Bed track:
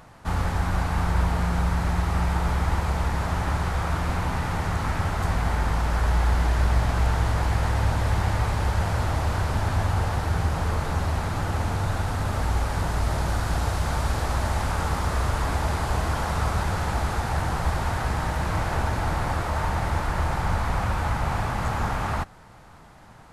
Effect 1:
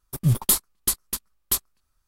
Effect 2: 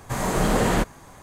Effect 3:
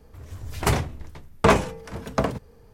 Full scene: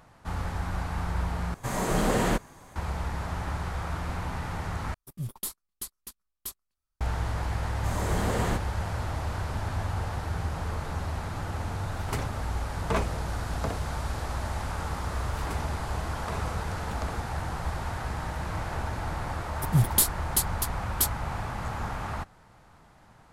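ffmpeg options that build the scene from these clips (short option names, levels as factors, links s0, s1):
-filter_complex "[2:a]asplit=2[s0][s1];[1:a]asplit=2[s2][s3];[3:a]asplit=2[s4][s5];[0:a]volume=0.447[s6];[s1]bandreject=f=2500:w=24[s7];[s5]acompressor=threshold=0.0355:ratio=6:attack=3.2:release=140:knee=1:detection=peak[s8];[s3]asoftclip=type=hard:threshold=0.473[s9];[s6]asplit=3[s10][s11][s12];[s10]atrim=end=1.544[s13];[s0]atrim=end=1.22,asetpts=PTS-STARTPTS,volume=0.631[s14];[s11]atrim=start=2.756:end=4.944[s15];[s2]atrim=end=2.07,asetpts=PTS-STARTPTS,volume=0.178[s16];[s12]atrim=start=7.006[s17];[s7]atrim=end=1.22,asetpts=PTS-STARTPTS,volume=0.376,afade=t=in:d=0.004:c=hsin,afade=t=out:st=1.216:d=0.004:c=hsin,adelay=7740[s18];[s4]atrim=end=2.73,asetpts=PTS-STARTPTS,volume=0.266,afade=t=in:d=0.004:c=hsin,afade=t=out:st=2.726:d=0.004:c=hsin,adelay=505386S[s19];[s8]atrim=end=2.73,asetpts=PTS-STARTPTS,volume=0.501,afade=t=in:d=0.004:c=hsin,afade=t=out:st=2.726:d=0.004:c=hsin,adelay=14840[s20];[s9]atrim=end=2.07,asetpts=PTS-STARTPTS,volume=0.75,afade=t=in:d=0.004:c=hsin,afade=t=out:st=2.066:d=0.004:c=hsin,adelay=19490[s21];[s13][s14]acrossfade=d=0.004:c1=hsin:c2=hsin[s22];[s22][s15]acrossfade=d=0.004:c1=hsin:c2=hsin[s23];[s23][s16]acrossfade=d=0.004:c1=hsin:c2=hsin[s24];[s24][s17]acrossfade=d=0.004:c1=hsin:c2=hsin[s25];[s25][s18][s19][s20][s21]amix=inputs=5:normalize=0"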